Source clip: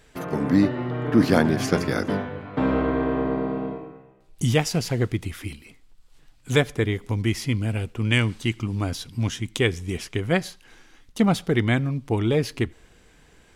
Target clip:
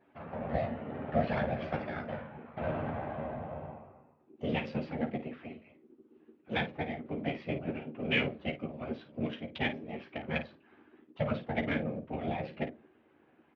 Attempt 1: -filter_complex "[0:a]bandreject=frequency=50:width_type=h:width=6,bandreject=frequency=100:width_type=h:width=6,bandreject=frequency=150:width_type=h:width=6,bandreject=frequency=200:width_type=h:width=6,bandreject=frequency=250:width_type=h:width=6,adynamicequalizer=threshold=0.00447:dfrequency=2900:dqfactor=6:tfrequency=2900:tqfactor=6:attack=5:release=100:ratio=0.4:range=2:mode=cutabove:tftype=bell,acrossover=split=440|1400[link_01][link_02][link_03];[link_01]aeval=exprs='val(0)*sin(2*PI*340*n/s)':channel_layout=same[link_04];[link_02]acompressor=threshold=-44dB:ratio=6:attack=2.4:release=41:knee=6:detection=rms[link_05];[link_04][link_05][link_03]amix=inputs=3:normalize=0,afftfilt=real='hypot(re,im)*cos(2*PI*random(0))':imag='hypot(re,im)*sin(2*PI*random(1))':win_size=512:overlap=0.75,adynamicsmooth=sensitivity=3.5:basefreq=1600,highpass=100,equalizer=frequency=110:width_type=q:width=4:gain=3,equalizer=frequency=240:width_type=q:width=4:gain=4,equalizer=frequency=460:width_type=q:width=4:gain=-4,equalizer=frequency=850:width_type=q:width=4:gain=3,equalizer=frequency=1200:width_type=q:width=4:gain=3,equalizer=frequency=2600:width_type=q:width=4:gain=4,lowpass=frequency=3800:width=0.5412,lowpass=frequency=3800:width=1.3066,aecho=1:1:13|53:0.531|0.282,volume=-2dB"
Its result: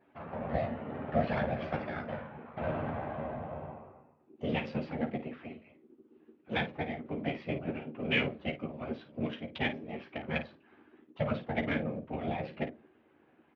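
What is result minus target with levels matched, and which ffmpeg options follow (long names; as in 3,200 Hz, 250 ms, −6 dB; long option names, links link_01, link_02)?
downward compressor: peak gain reduction −6.5 dB
-filter_complex "[0:a]bandreject=frequency=50:width_type=h:width=6,bandreject=frequency=100:width_type=h:width=6,bandreject=frequency=150:width_type=h:width=6,bandreject=frequency=200:width_type=h:width=6,bandreject=frequency=250:width_type=h:width=6,adynamicequalizer=threshold=0.00447:dfrequency=2900:dqfactor=6:tfrequency=2900:tqfactor=6:attack=5:release=100:ratio=0.4:range=2:mode=cutabove:tftype=bell,acrossover=split=440|1400[link_01][link_02][link_03];[link_01]aeval=exprs='val(0)*sin(2*PI*340*n/s)':channel_layout=same[link_04];[link_02]acompressor=threshold=-52dB:ratio=6:attack=2.4:release=41:knee=6:detection=rms[link_05];[link_04][link_05][link_03]amix=inputs=3:normalize=0,afftfilt=real='hypot(re,im)*cos(2*PI*random(0))':imag='hypot(re,im)*sin(2*PI*random(1))':win_size=512:overlap=0.75,adynamicsmooth=sensitivity=3.5:basefreq=1600,highpass=100,equalizer=frequency=110:width_type=q:width=4:gain=3,equalizer=frequency=240:width_type=q:width=4:gain=4,equalizer=frequency=460:width_type=q:width=4:gain=-4,equalizer=frequency=850:width_type=q:width=4:gain=3,equalizer=frequency=1200:width_type=q:width=4:gain=3,equalizer=frequency=2600:width_type=q:width=4:gain=4,lowpass=frequency=3800:width=0.5412,lowpass=frequency=3800:width=1.3066,aecho=1:1:13|53:0.531|0.282,volume=-2dB"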